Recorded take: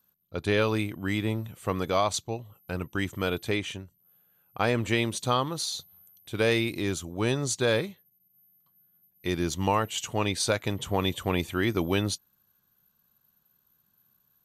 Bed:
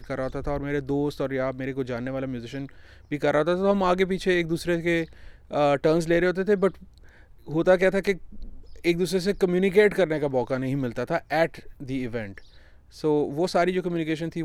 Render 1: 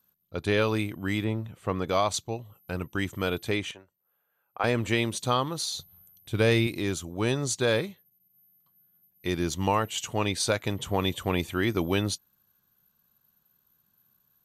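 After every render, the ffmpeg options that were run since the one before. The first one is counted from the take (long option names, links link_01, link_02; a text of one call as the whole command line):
ffmpeg -i in.wav -filter_complex "[0:a]asettb=1/sr,asplit=3[link_01][link_02][link_03];[link_01]atrim=end=1.244[link_04];[link_02]atrim=start=1.24:end=1.89,asetpts=PTS-STARTPTS,afade=type=in:duration=0.004:curve=qsin,afade=type=out:start_time=0.646:duration=0.004:curve=qsin,lowpass=frequency=2700:poles=1[link_05];[link_03]atrim=start=1.886[link_06];[link_04][link_05]acrossfade=duration=0.004:curve1=hsin:curve2=qsin[link_07];[link_07][link_06]acrossfade=duration=0.004:curve1=qsin:curve2=hsin,asettb=1/sr,asplit=3[link_08][link_09][link_10];[link_08]atrim=end=3.714[link_11];[link_09]atrim=start=3.71:end=4.64,asetpts=PTS-STARTPTS,afade=type=in:duration=0.004:curve=qsin,afade=type=out:start_time=0.926:duration=0.004:curve=qsin,acrossover=split=420 2300:gain=0.112 1 0.251[link_12][link_13][link_14];[link_12][link_13][link_14]amix=inputs=3:normalize=0[link_15];[link_10]atrim=start=4.636[link_16];[link_11][link_15]acrossfade=duration=0.004:curve1=hsin:curve2=qsin[link_17];[link_17][link_16]acrossfade=duration=0.004:curve1=qsin:curve2=hsin,asettb=1/sr,asplit=3[link_18][link_19][link_20];[link_18]atrim=end=5.774[link_21];[link_19]atrim=start=5.77:end=6.67,asetpts=PTS-STARTPTS,afade=type=in:duration=0.004:curve=qsin,afade=type=out:start_time=0.896:duration=0.004:curve=qsin,lowshelf=frequency=150:gain=10.5[link_22];[link_20]atrim=start=6.666[link_23];[link_21][link_22]acrossfade=duration=0.004:curve1=hsin:curve2=qsin[link_24];[link_24][link_23]acrossfade=duration=0.004:curve1=qsin:curve2=hsin" out.wav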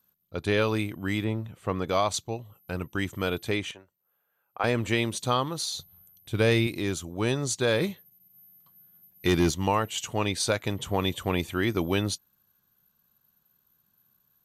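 ffmpeg -i in.wav -filter_complex "[0:a]asplit=3[link_01][link_02][link_03];[link_01]afade=type=out:start_time=7.8:duration=0.02[link_04];[link_02]aeval=exprs='0.168*sin(PI/2*1.58*val(0)/0.168)':channel_layout=same,afade=type=in:start_time=7.8:duration=0.02,afade=type=out:start_time=9.5:duration=0.02[link_05];[link_03]afade=type=in:start_time=9.5:duration=0.02[link_06];[link_04][link_05][link_06]amix=inputs=3:normalize=0" out.wav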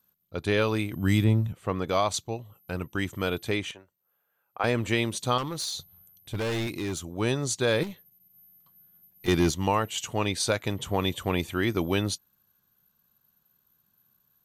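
ffmpeg -i in.wav -filter_complex "[0:a]asettb=1/sr,asplit=3[link_01][link_02][link_03];[link_01]atrim=end=0.924[link_04];[link_02]atrim=start=0.92:end=1.53,asetpts=PTS-STARTPTS,afade=type=in:duration=0.004:curve=qsin,afade=type=out:start_time=0.606:duration=0.004:curve=qsin,bass=frequency=250:gain=10,treble=frequency=4000:gain=8[link_05];[link_03]atrim=start=1.526[link_06];[link_04][link_05]acrossfade=duration=0.004:curve1=hsin:curve2=qsin[link_07];[link_07][link_06]acrossfade=duration=0.004:curve1=qsin:curve2=hsin,asettb=1/sr,asplit=3[link_08][link_09][link_10];[link_08]atrim=end=5.384[link_11];[link_09]atrim=start=5.38:end=7.01,asetpts=PTS-STARTPTS,afade=type=in:duration=0.004:curve=qsin,afade=type=out:start_time=1.626:duration=0.004:curve=qsin,volume=26.5dB,asoftclip=hard,volume=-26.5dB[link_12];[link_10]atrim=start=7.006[link_13];[link_11][link_12]acrossfade=duration=0.004:curve1=hsin:curve2=qsin[link_14];[link_14][link_13]acrossfade=duration=0.004:curve1=qsin:curve2=hsin,asettb=1/sr,asplit=3[link_15][link_16][link_17];[link_15]atrim=end=7.834[link_18];[link_16]atrim=start=7.83:end=9.28,asetpts=PTS-STARTPTS,afade=type=in:duration=0.004:curve=qsin,afade=type=out:start_time=1.446:duration=0.004:curve=qsin,aeval=exprs='(tanh(44.7*val(0)+0.4)-tanh(0.4))/44.7':channel_layout=same[link_19];[link_17]atrim=start=9.276[link_20];[link_18][link_19]acrossfade=duration=0.004:curve1=hsin:curve2=qsin[link_21];[link_21][link_20]acrossfade=duration=0.004:curve1=qsin:curve2=hsin" out.wav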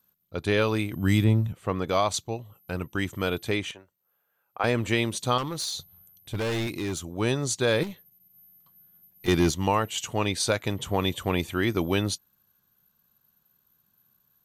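ffmpeg -i in.wav -af "volume=1dB" out.wav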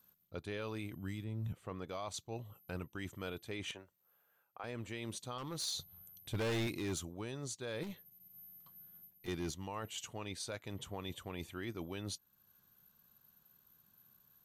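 ffmpeg -i in.wav -af "areverse,acompressor=threshold=-33dB:ratio=12,areverse,alimiter=level_in=8dB:limit=-24dB:level=0:latency=1:release=435,volume=-8dB" out.wav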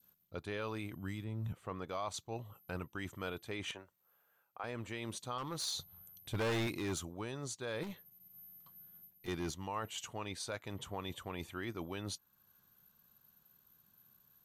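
ffmpeg -i in.wav -af "adynamicequalizer=threshold=0.00112:dfrequency=1100:dqfactor=0.91:tfrequency=1100:tqfactor=0.91:attack=5:release=100:ratio=0.375:range=2.5:mode=boostabove:tftype=bell" out.wav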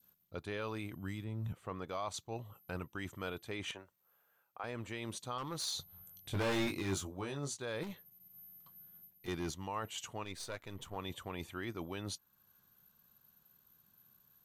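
ffmpeg -i in.wav -filter_complex "[0:a]asettb=1/sr,asplit=3[link_01][link_02][link_03];[link_01]atrim=end=5.874[link_04];[link_02]atrim=start=5.87:end=7.62,asetpts=PTS-STARTPTS,afade=type=in:duration=0.004:curve=qsin,afade=type=out:start_time=1.746:duration=0.004:curve=qsin,asplit=2[link_05][link_06];[link_06]adelay=21,volume=-4.5dB[link_07];[link_05][link_07]amix=inputs=2:normalize=0,atrim=end_sample=77175[link_08];[link_03]atrim=start=7.616[link_09];[link_04][link_08]acrossfade=duration=0.004:curve1=hsin:curve2=qsin[link_10];[link_10][link_09]acrossfade=duration=0.004:curve1=qsin:curve2=hsin,asettb=1/sr,asplit=3[link_11][link_12][link_13];[link_11]atrim=end=10.244[link_14];[link_12]atrim=start=10.24:end=10.96,asetpts=PTS-STARTPTS,afade=type=in:duration=0.004:curve=qsin,afade=type=out:start_time=0.716:duration=0.004:curve=qsin,aeval=exprs='if(lt(val(0),0),0.447*val(0),val(0))':channel_layout=same[link_15];[link_13]atrim=start=10.956[link_16];[link_14][link_15]acrossfade=duration=0.004:curve1=hsin:curve2=qsin[link_17];[link_17][link_16]acrossfade=duration=0.004:curve1=qsin:curve2=hsin" out.wav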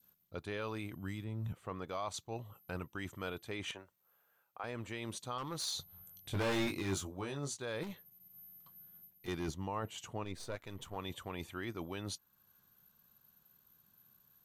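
ffmpeg -i in.wav -filter_complex "[0:a]asettb=1/sr,asplit=3[link_01][link_02][link_03];[link_01]atrim=end=9.484[link_04];[link_02]atrim=start=9.48:end=10.56,asetpts=PTS-STARTPTS,afade=type=in:duration=0.004:curve=qsin,afade=type=out:start_time=1.076:duration=0.004:curve=qsin,tiltshelf=frequency=920:gain=4.5[link_05];[link_03]atrim=start=10.556[link_06];[link_04][link_05]acrossfade=duration=0.004:curve1=hsin:curve2=qsin[link_07];[link_07][link_06]acrossfade=duration=0.004:curve1=qsin:curve2=hsin" out.wav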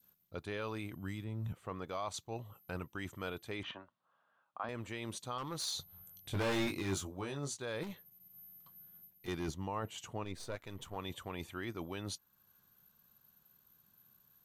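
ffmpeg -i in.wav -filter_complex "[0:a]asettb=1/sr,asplit=3[link_01][link_02][link_03];[link_01]atrim=end=3.634[link_04];[link_02]atrim=start=3.63:end=4.69,asetpts=PTS-STARTPTS,afade=type=in:duration=0.004:curve=qsin,afade=type=out:start_time=1.056:duration=0.004:curve=qsin,highpass=100,equalizer=frequency=250:width_type=q:width=4:gain=7,equalizer=frequency=430:width_type=q:width=4:gain=-9,equalizer=frequency=640:width_type=q:width=4:gain=4,equalizer=frequency=1100:width_type=q:width=4:gain=8,equalizer=frequency=2300:width_type=q:width=4:gain=-7,lowpass=frequency=3800:width=0.5412,lowpass=frequency=3800:width=1.3066[link_05];[link_03]atrim=start=4.686[link_06];[link_04][link_05]acrossfade=duration=0.004:curve1=hsin:curve2=qsin[link_07];[link_07][link_06]acrossfade=duration=0.004:curve1=qsin:curve2=hsin" out.wav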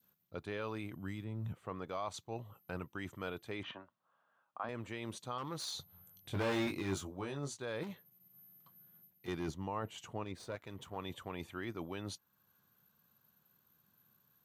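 ffmpeg -i in.wav -af "highpass=83,equalizer=frequency=11000:width_type=o:width=2.5:gain=-5.5" out.wav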